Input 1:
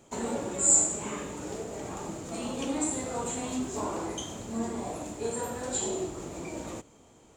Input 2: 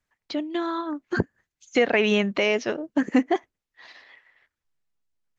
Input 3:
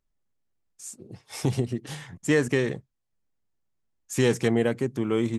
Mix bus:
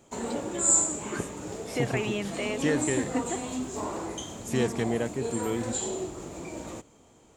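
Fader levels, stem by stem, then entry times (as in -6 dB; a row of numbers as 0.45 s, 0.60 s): -0.5 dB, -10.5 dB, -5.5 dB; 0.00 s, 0.00 s, 0.35 s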